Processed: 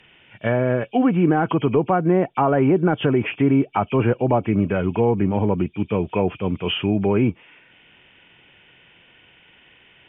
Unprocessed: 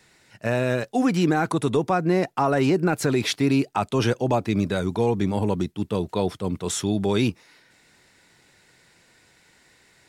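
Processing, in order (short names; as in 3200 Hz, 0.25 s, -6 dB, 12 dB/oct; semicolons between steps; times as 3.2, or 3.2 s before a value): nonlinear frequency compression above 2200 Hz 4:1; treble ducked by the level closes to 1400 Hz, closed at -18.5 dBFS; gain +3.5 dB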